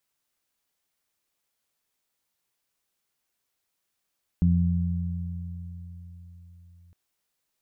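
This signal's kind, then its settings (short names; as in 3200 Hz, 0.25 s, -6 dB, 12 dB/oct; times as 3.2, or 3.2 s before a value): additive tone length 2.51 s, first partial 86.9 Hz, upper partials 2/-15 dB, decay 4.77 s, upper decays 3.13/1.11 s, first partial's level -20.5 dB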